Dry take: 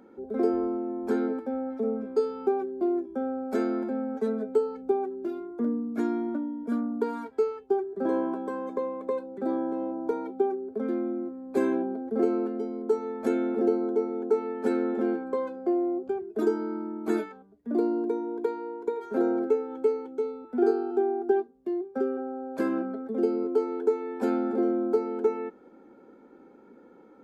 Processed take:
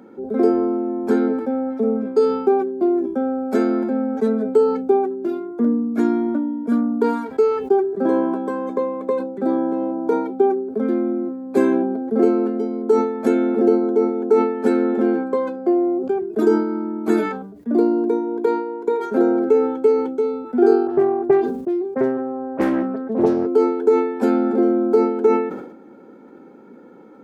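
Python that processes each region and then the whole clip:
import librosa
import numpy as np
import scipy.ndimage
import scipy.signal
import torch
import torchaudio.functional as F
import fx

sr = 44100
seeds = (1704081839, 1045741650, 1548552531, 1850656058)

y = fx.chain(x, sr, fx.hum_notches(base_hz=60, count=4),
    fx.dispersion(late='highs', ms=40.0, hz=2800.0),
    fx.doppler_dist(depth_ms=0.34), at=(20.87, 23.46))
y = scipy.signal.sosfilt(scipy.signal.butter(2, 81.0, 'highpass', fs=sr, output='sos'), y)
y = fx.peak_eq(y, sr, hz=170.0, db=4.0, octaves=1.1)
y = fx.sustainer(y, sr, db_per_s=64.0)
y = y * librosa.db_to_amplitude(7.5)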